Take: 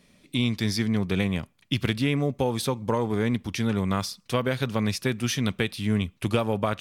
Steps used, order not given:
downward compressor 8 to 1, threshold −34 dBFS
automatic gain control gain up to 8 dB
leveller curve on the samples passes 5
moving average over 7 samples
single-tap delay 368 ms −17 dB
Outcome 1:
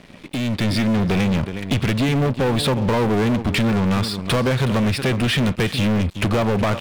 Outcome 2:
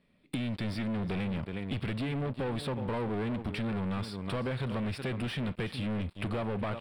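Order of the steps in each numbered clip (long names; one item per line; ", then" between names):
moving average, then downward compressor, then single-tap delay, then leveller curve on the samples, then automatic gain control
automatic gain control, then single-tap delay, then leveller curve on the samples, then downward compressor, then moving average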